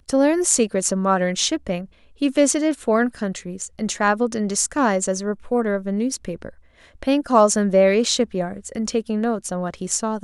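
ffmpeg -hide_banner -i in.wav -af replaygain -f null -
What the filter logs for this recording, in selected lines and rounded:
track_gain = +0.9 dB
track_peak = 0.525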